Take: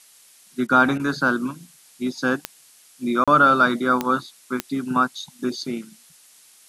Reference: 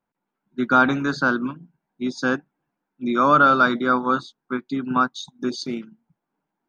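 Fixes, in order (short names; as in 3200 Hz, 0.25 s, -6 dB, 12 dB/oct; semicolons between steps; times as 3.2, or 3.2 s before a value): de-click; interpolate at 3.24, 36 ms; interpolate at 0.67/0.98, 14 ms; noise print and reduce 29 dB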